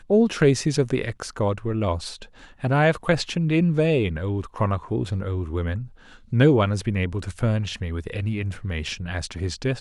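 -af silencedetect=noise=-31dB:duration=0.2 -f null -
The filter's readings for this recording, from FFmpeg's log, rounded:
silence_start: 2.23
silence_end: 2.64 | silence_duration: 0.40
silence_start: 5.85
silence_end: 6.32 | silence_duration: 0.48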